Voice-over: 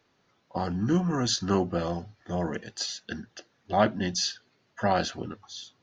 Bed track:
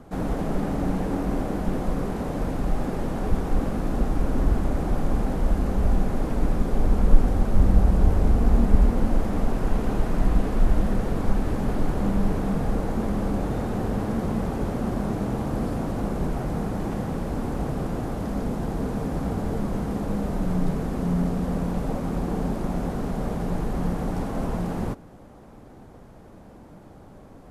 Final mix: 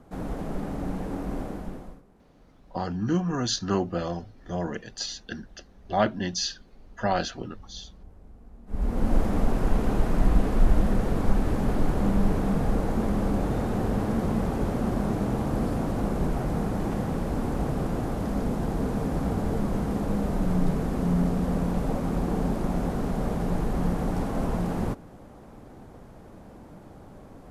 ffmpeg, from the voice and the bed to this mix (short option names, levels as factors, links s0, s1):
-filter_complex "[0:a]adelay=2200,volume=0.944[s0];[1:a]volume=15.8,afade=t=out:st=1.42:d=0.6:silence=0.0630957,afade=t=in:st=8.66:d=0.5:silence=0.0316228[s1];[s0][s1]amix=inputs=2:normalize=0"